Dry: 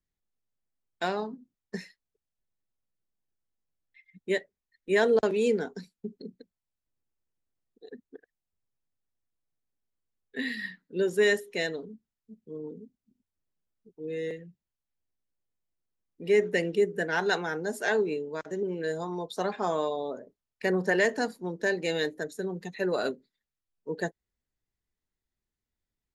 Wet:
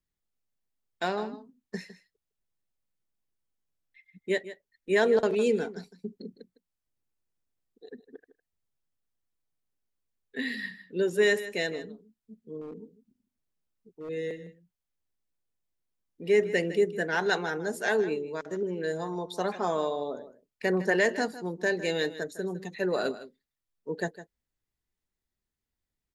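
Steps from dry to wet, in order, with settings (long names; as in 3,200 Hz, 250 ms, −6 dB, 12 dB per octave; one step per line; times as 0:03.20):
single-tap delay 157 ms −14.5 dB
0:12.61–0:14.09: gain into a clipping stage and back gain 36 dB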